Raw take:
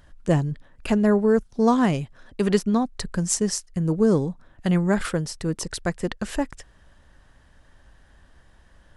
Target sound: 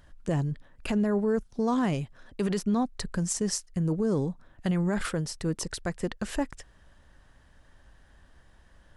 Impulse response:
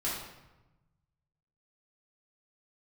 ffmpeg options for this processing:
-af "alimiter=limit=-15.5dB:level=0:latency=1:release=31,volume=-3dB"

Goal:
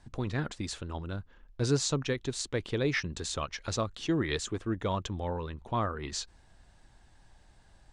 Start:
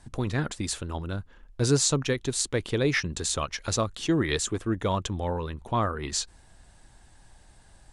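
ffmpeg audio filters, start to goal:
-af "lowpass=6.2k,volume=-4.5dB"

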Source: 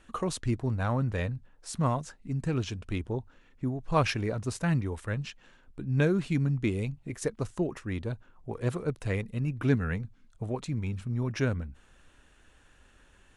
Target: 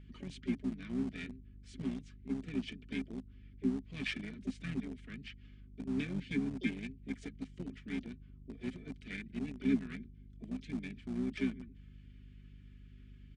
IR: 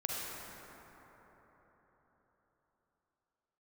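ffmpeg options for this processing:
-filter_complex "[0:a]highpass=f=150:p=1,aecho=1:1:4.7:0.65,acrossover=split=260|1500[a][b][c];[b]acompressor=threshold=-43dB:ratio=8[d];[a][d][c]amix=inputs=3:normalize=0,asplit=3[e][f][g];[e]bandpass=f=270:t=q:w=8,volume=0dB[h];[f]bandpass=f=2.29k:t=q:w=8,volume=-6dB[i];[g]bandpass=f=3.01k:t=q:w=8,volume=-9dB[j];[h][i][j]amix=inputs=3:normalize=0,aeval=exprs='val(0)+0.00158*(sin(2*PI*50*n/s)+sin(2*PI*2*50*n/s)/2+sin(2*PI*3*50*n/s)/3+sin(2*PI*4*50*n/s)/4+sin(2*PI*5*50*n/s)/5)':c=same,asplit=3[k][l][m];[l]asetrate=33038,aresample=44100,atempo=1.33484,volume=-8dB[n];[m]asetrate=66075,aresample=44100,atempo=0.66742,volume=-13dB[o];[k][n][o]amix=inputs=3:normalize=0,asplit=2[p][q];[q]aeval=exprs='val(0)*gte(abs(val(0)),0.00891)':c=same,volume=-10dB[r];[p][r]amix=inputs=2:normalize=0,volume=3dB" -ar 22050 -c:a libmp3lame -b:a 128k

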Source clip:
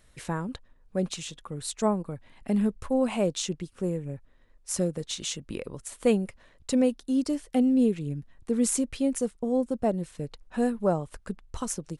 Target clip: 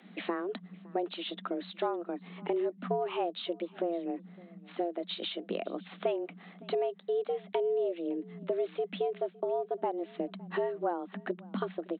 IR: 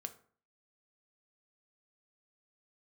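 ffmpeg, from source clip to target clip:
-filter_complex "[0:a]acompressor=threshold=-37dB:ratio=4,asplit=2[a][b];[b]aecho=0:1:561:0.0631[c];[a][c]amix=inputs=2:normalize=0,aresample=8000,aresample=44100,afreqshift=170,volume=6dB"

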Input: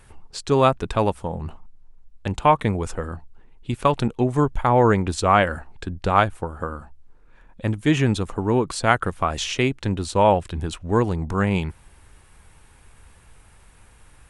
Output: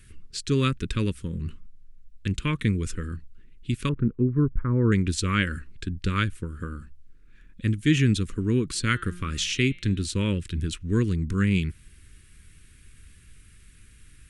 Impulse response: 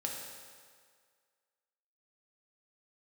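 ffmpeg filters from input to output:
-filter_complex "[0:a]asettb=1/sr,asplit=3[a][b][c];[a]atrim=end=3.894[d];[b]atrim=start=3.89:end=4.92,asetpts=PTS-STARTPTS,afade=t=in:d=0.004:c=qsin,afade=t=out:st=1.026:d=0.004:c=qsin,lowpass=f=1.3k:w=0.5412,lowpass=f=1.3k:w=1.3066[e];[c]atrim=start=4.916[f];[d][e]acrossfade=d=0.004:c1=hsin:c2=qsin[g];[g][f]acrossfade=d=0.004:c1=qsin:c2=hsin,asplit=3[h][i][j];[h]afade=t=out:st=8.74:d=0.02[k];[i]bandreject=f=177:t=h:w=4,bandreject=f=354:t=h:w=4,bandreject=f=531:t=h:w=4,bandreject=f=708:t=h:w=4,bandreject=f=885:t=h:w=4,bandreject=f=1.062k:t=h:w=4,bandreject=f=1.239k:t=h:w=4,bandreject=f=1.416k:t=h:w=4,bandreject=f=1.593k:t=h:w=4,bandreject=f=1.77k:t=h:w=4,bandreject=f=1.947k:t=h:w=4,bandreject=f=2.124k:t=h:w=4,bandreject=f=2.301k:t=h:w=4,bandreject=f=2.478k:t=h:w=4,bandreject=f=2.655k:t=h:w=4,bandreject=f=2.832k:t=h:w=4,bandreject=f=3.009k:t=h:w=4,bandreject=f=3.186k:t=h:w=4,bandreject=f=3.363k:t=h:w=4,bandreject=f=3.54k:t=h:w=4,bandreject=f=3.717k:t=h:w=4,bandreject=f=3.894k:t=h:w=4,bandreject=f=4.071k:t=h:w=4,bandreject=f=4.248k:t=h:w=4,afade=t=in:st=8.74:d=0.02,afade=t=out:st=10.05:d=0.02[l];[j]afade=t=in:st=10.05:d=0.02[m];[k][l][m]amix=inputs=3:normalize=0,asuperstop=centerf=750:order=4:qfactor=0.53"

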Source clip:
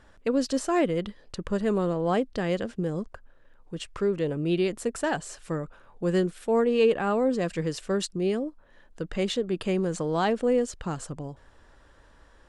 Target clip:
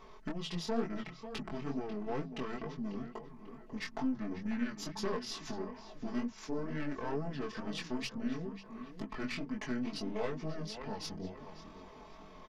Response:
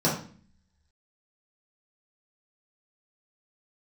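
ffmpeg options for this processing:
-filter_complex "[0:a]bandreject=f=50:t=h:w=6,bandreject=f=100:t=h:w=6,bandreject=f=150:t=h:w=6,bandreject=f=200:t=h:w=6,bandreject=f=250:t=h:w=6,bandreject=f=300:t=h:w=6,acompressor=threshold=-41dB:ratio=3,asetrate=28595,aresample=44100,atempo=1.54221,lowshelf=f=230:g=-9,asplit=2[a][b];[b]adelay=543,lowpass=f=3.3k:p=1,volume=-12dB,asplit=2[c][d];[d]adelay=543,lowpass=f=3.3k:p=1,volume=0.5,asplit=2[e][f];[f]adelay=543,lowpass=f=3.3k:p=1,volume=0.5,asplit=2[g][h];[h]adelay=543,lowpass=f=3.3k:p=1,volume=0.5,asplit=2[i][j];[j]adelay=543,lowpass=f=3.3k:p=1,volume=0.5[k];[c][e][g][i][k]amix=inputs=5:normalize=0[l];[a][l]amix=inputs=2:normalize=0,aeval=exprs='(tanh(70.8*val(0)+0.55)-tanh(0.55))/70.8':c=same,aecho=1:1:4.6:0.9,flanger=delay=19:depth=5.7:speed=2.2,volume=9.5dB"

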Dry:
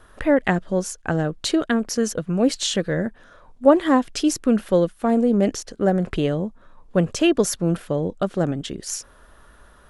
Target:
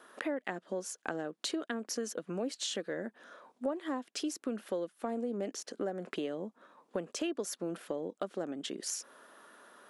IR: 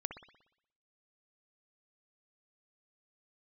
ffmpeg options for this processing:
-af "highpass=f=240:w=0.5412,highpass=f=240:w=1.3066,acompressor=threshold=-32dB:ratio=4,volume=-3dB"

